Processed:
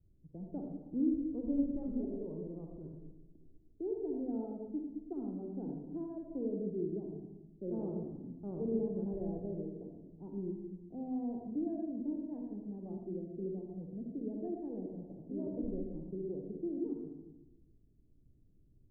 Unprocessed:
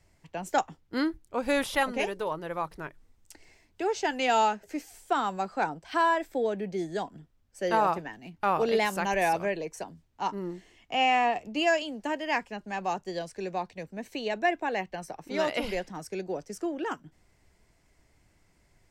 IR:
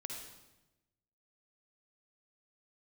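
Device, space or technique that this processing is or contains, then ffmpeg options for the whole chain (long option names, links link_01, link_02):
next room: -filter_complex "[0:a]lowpass=frequency=350:width=0.5412,lowpass=frequency=350:width=1.3066[link_01];[1:a]atrim=start_sample=2205[link_02];[link_01][link_02]afir=irnorm=-1:irlink=0,asettb=1/sr,asplit=3[link_03][link_04][link_05];[link_03]atrim=end=13.064[link_06];[link_04]atrim=start=13.06:end=13.7,asetpts=PTS-STARTPTS,afade=type=in:duration=0.004:curve=qsin,afade=type=out:start_time=0.636:duration=0.004:curve=qsin,equalizer=frequency=125:width_type=o:width=1:gain=-4,equalizer=frequency=250:width_type=o:width=1:gain=5,equalizer=frequency=1000:width_type=o:width=1:gain=-8[link_07];[link_05]atrim=start=13.696[link_08];[link_06][link_07]acrossfade=duration=0.004:curve1=hsin:curve2=qsin[link_09];[link_09][link_08]acrossfade=duration=0.004:curve1=qsin:curve2=hsin,volume=1dB"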